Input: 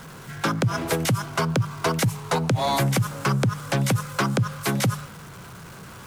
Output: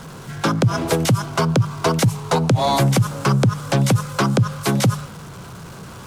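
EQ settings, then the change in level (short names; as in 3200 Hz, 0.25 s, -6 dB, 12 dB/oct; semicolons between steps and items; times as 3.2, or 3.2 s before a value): bell 1900 Hz -5.5 dB 1.2 oct; high shelf 12000 Hz -10 dB; +6.0 dB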